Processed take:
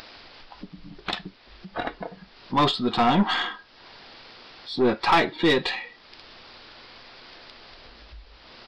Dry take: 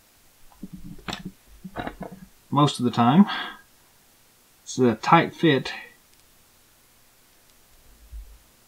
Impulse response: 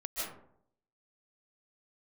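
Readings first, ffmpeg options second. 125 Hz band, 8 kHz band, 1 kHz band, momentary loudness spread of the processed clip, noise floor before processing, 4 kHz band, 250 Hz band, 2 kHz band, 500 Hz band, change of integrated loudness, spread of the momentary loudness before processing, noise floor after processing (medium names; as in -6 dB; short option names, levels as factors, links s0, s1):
-7.5 dB, -9.5 dB, -0.5 dB, 20 LU, -58 dBFS, +4.0 dB, -4.0 dB, +2.0 dB, +0.5 dB, -2.0 dB, 21 LU, -53 dBFS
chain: -af "acompressor=mode=upward:threshold=0.0158:ratio=2.5,bass=f=250:g=-10,treble=f=4000:g=4,aresample=11025,asoftclip=type=tanh:threshold=0.133,aresample=44100,aeval=exprs='0.168*(cos(1*acos(clip(val(0)/0.168,-1,1)))-cos(1*PI/2))+0.00944*(cos(4*acos(clip(val(0)/0.168,-1,1)))-cos(4*PI/2))':c=same,volume=1.58"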